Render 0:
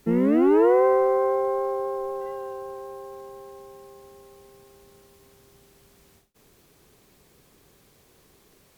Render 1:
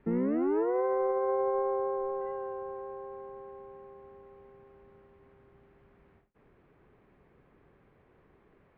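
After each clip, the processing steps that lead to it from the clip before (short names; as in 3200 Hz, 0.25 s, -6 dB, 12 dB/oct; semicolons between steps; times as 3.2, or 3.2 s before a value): LPF 2100 Hz 24 dB/oct; limiter -18.5 dBFS, peak gain reduction 9.5 dB; gain -3 dB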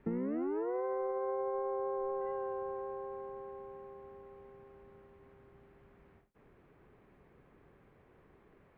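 compressor 10:1, threshold -32 dBFS, peak gain reduction 8 dB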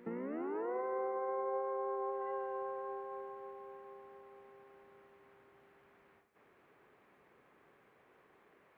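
HPF 790 Hz 6 dB/oct; reverse echo 0.134 s -15.5 dB; Schroeder reverb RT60 3.8 s, combs from 27 ms, DRR 13 dB; gain +3 dB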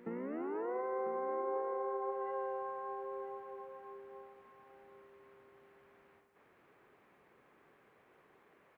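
echo 0.996 s -12.5 dB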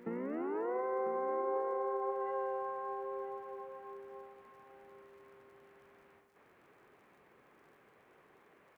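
crackle 61/s -63 dBFS; gain +2 dB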